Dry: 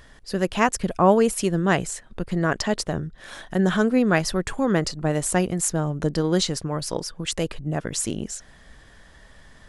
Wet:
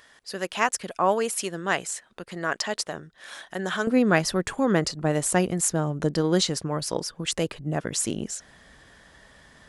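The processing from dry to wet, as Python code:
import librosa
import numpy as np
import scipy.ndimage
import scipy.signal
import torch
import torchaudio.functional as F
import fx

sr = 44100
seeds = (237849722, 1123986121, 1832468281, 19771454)

y = fx.highpass(x, sr, hz=fx.steps((0.0, 880.0), (3.87, 120.0)), slope=6)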